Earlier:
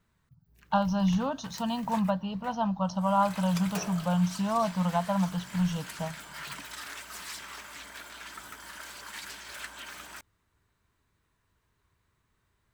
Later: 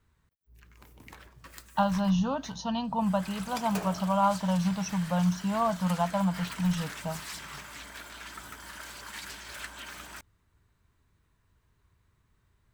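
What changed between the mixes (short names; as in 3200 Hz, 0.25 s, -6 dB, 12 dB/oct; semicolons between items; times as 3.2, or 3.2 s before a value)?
speech: entry +1.05 s; background: add low shelf 190 Hz +8 dB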